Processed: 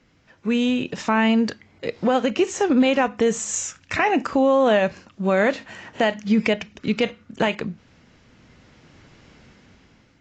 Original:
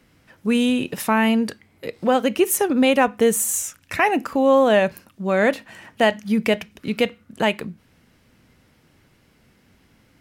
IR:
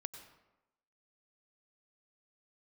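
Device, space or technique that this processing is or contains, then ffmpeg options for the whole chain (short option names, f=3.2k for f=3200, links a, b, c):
low-bitrate web radio: -af "dynaudnorm=f=490:g=5:m=15dB,alimiter=limit=-7.5dB:level=0:latency=1:release=131,volume=-2.5dB" -ar 16000 -c:a aac -b:a 32k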